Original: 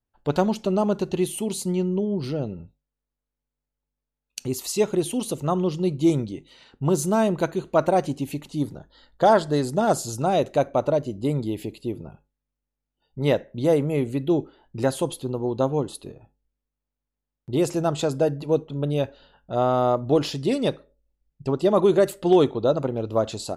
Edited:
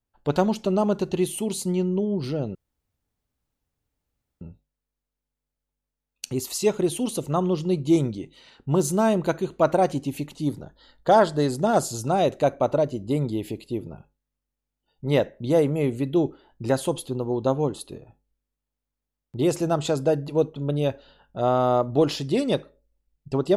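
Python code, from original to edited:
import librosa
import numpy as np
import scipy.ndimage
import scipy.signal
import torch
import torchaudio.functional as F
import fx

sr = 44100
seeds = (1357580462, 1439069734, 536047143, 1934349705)

y = fx.edit(x, sr, fx.insert_room_tone(at_s=2.55, length_s=1.86), tone=tone)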